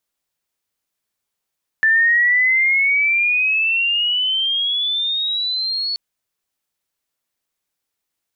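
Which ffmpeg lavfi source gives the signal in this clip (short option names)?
-f lavfi -i "aevalsrc='pow(10,(-11-8.5*t/4.13)/20)*sin(2*PI*1760*4.13/(16*log(2)/12)*(exp(16*log(2)/12*t/4.13)-1))':d=4.13:s=44100"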